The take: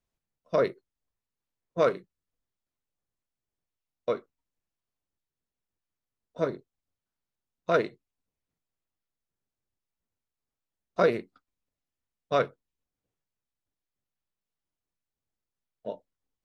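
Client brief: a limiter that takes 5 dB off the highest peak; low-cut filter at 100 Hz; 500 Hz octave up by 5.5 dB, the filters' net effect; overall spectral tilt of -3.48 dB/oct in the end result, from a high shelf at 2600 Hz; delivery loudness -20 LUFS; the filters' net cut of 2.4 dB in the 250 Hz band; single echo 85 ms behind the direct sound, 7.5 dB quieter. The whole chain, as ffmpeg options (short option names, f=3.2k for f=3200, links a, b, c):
-af "highpass=100,equalizer=f=250:t=o:g=-8.5,equalizer=f=500:t=o:g=8,highshelf=f=2.6k:g=3.5,alimiter=limit=-11.5dB:level=0:latency=1,aecho=1:1:85:0.422,volume=6.5dB"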